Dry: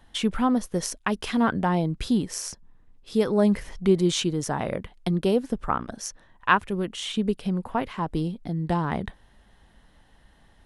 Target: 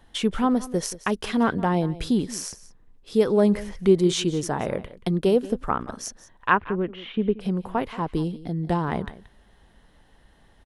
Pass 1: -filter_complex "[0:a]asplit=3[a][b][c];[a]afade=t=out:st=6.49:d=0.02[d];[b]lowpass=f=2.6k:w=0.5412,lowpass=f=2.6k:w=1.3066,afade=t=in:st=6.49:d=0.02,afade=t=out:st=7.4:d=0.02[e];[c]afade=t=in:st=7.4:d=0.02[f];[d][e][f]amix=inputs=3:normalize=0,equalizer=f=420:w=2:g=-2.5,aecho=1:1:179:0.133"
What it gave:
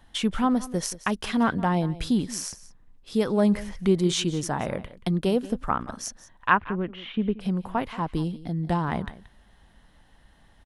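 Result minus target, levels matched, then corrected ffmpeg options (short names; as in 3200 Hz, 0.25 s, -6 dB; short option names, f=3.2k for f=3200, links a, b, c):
500 Hz band -3.0 dB
-filter_complex "[0:a]asplit=3[a][b][c];[a]afade=t=out:st=6.49:d=0.02[d];[b]lowpass=f=2.6k:w=0.5412,lowpass=f=2.6k:w=1.3066,afade=t=in:st=6.49:d=0.02,afade=t=out:st=7.4:d=0.02[e];[c]afade=t=in:st=7.4:d=0.02[f];[d][e][f]amix=inputs=3:normalize=0,equalizer=f=420:w=2:g=4,aecho=1:1:179:0.133"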